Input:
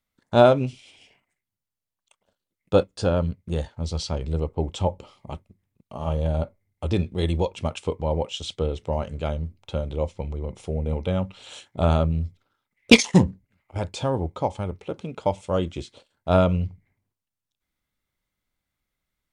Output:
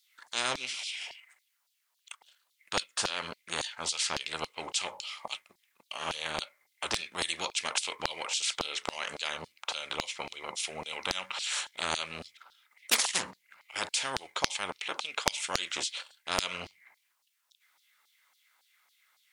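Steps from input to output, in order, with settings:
auto-filter high-pass saw down 3.6 Hz 790–4,700 Hz
every bin compressed towards the loudest bin 4 to 1
level −4 dB

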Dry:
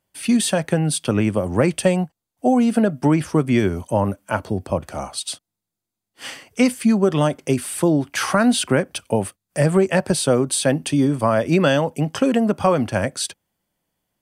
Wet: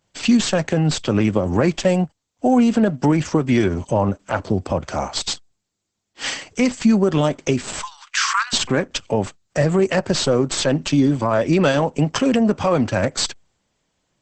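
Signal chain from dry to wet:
stylus tracing distortion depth 0.098 ms
0:07.82–0:08.53: Butterworth high-pass 1,000 Hz 72 dB per octave
high-shelf EQ 7,700 Hz +7.5 dB
in parallel at +2 dB: downward compressor 8 to 1, threshold −26 dBFS, peak gain reduction 15 dB
on the sum: brickwall limiter −7 dBFS, peak gain reduction 6 dB
Opus 10 kbit/s 48,000 Hz

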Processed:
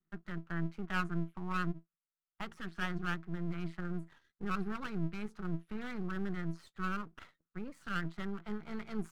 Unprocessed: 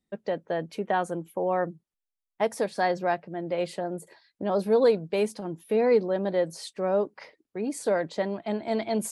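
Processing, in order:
pair of resonant band-passes 470 Hz, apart 3 octaves
dynamic equaliser 670 Hz, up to −6 dB, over −59 dBFS, Q 1.2
half-wave rectification
level +10 dB

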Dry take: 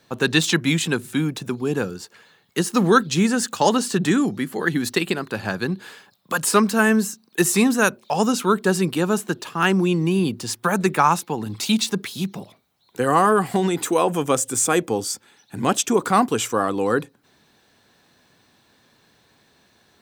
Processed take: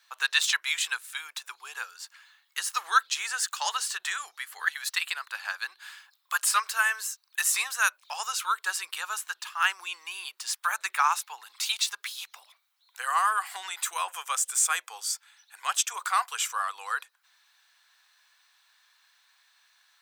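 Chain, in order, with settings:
inverse Chebyshev high-pass filter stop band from 240 Hz, stop band 70 dB
level −3 dB

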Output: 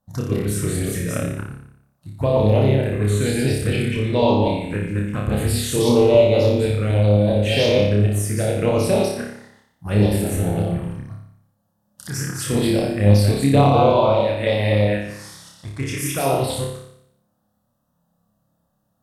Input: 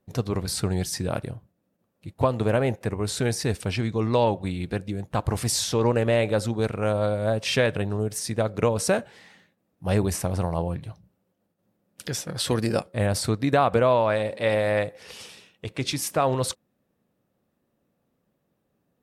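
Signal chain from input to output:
delay that plays each chunk backwards 128 ms, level −0.5 dB
phaser swept by the level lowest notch 390 Hz, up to 1,700 Hz, full sweep at −15.5 dBFS
on a send: flutter between parallel walls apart 5 metres, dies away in 0.71 s
on the sum: level +1.5 dB

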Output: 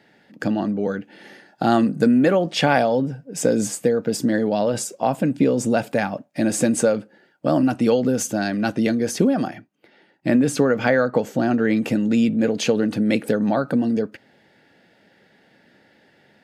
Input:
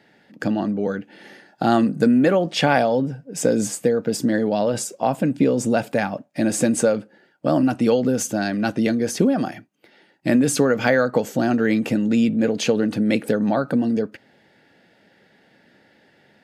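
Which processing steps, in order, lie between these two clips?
0:09.47–0:11.77: high-shelf EQ 4,400 Hz −8 dB

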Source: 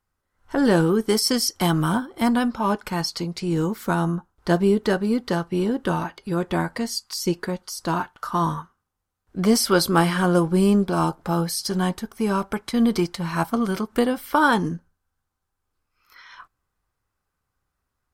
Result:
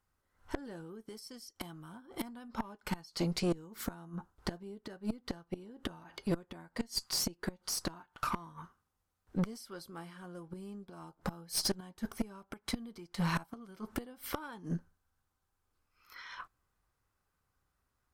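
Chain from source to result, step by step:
gate with flip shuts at −15 dBFS, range −26 dB
tube saturation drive 25 dB, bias 0.5

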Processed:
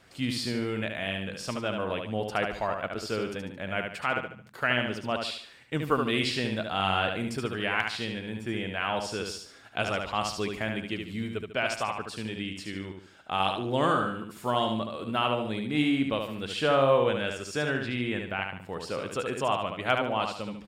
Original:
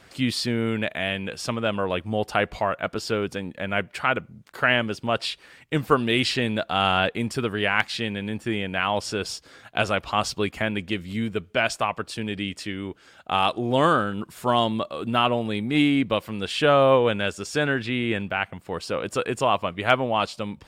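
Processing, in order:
repeating echo 73 ms, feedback 37%, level −5 dB
level −6.5 dB

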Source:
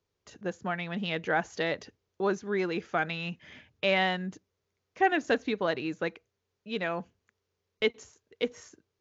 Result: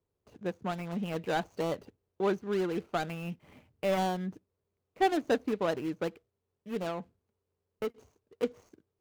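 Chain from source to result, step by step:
running median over 25 samples
0:06.89–0:07.98: downward compressor 2.5 to 1, threshold −33 dBFS, peak gain reduction 7 dB

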